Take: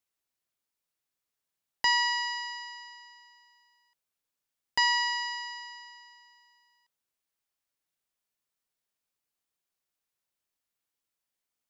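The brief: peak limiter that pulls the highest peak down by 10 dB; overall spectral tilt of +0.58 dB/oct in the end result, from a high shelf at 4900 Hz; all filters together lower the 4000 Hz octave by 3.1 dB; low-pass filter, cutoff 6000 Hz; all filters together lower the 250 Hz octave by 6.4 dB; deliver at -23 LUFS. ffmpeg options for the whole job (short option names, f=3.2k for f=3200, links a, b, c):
-af "lowpass=6k,equalizer=f=250:t=o:g=-9,equalizer=f=4k:t=o:g=-6,highshelf=f=4.9k:g=4.5,volume=12dB,alimiter=limit=-14dB:level=0:latency=1"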